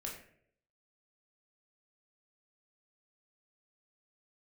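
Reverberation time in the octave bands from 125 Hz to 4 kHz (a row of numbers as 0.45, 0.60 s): 0.80, 0.70, 0.80, 0.50, 0.60, 0.40 s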